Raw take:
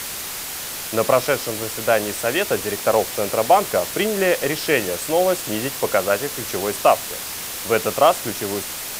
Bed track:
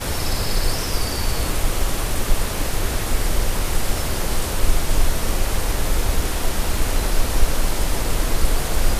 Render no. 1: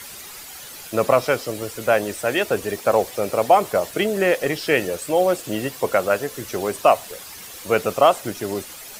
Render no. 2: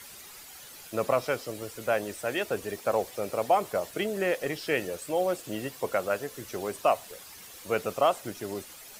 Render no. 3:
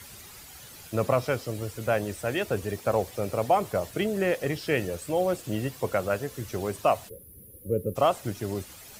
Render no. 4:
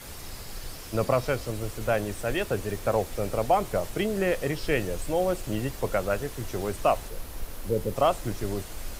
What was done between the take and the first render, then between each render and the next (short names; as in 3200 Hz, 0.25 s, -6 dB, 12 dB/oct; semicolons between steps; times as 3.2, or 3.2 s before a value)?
denoiser 11 dB, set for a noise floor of -30 dBFS
gain -9 dB
bell 86 Hz +14 dB 2.2 oct; 7.09–7.96 spectral gain 570–9600 Hz -28 dB
add bed track -19 dB